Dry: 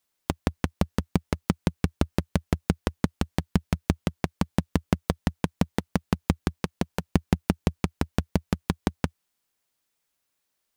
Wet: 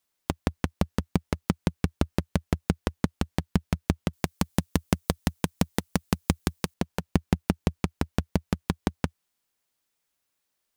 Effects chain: 4.13–6.74 high shelf 4600 Hz +11.5 dB; gain -1 dB

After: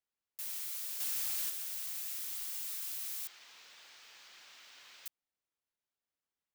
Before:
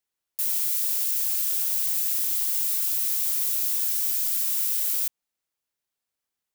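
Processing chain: high shelf 5300 Hz -10 dB; 1–1.5 sample leveller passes 2; 3.27–5.06 air absorption 200 m; gain -6 dB

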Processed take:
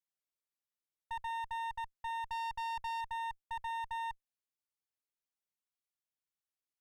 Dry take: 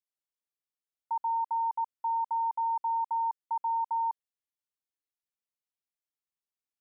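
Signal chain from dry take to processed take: 2.29–3.01 sample leveller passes 1; one-sided clip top -43.5 dBFS, bottom -28 dBFS; gain -4 dB

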